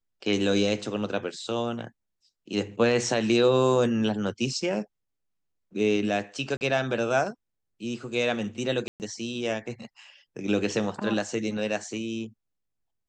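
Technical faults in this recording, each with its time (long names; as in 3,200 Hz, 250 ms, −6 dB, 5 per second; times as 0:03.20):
0:06.57–0:06.61: drop-out 39 ms
0:08.88–0:09.00: drop-out 119 ms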